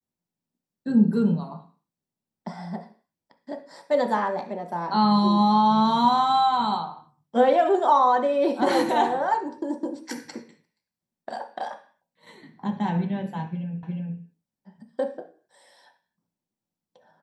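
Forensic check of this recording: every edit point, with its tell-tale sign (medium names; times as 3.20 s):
13.83 s: repeat of the last 0.36 s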